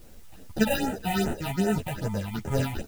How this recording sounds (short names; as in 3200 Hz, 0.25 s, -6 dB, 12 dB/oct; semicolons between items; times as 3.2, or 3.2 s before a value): aliases and images of a low sample rate 1100 Hz, jitter 0%; phasing stages 6, 2.5 Hz, lowest notch 350–5000 Hz; a quantiser's noise floor 10-bit, dither triangular; a shimmering, thickened sound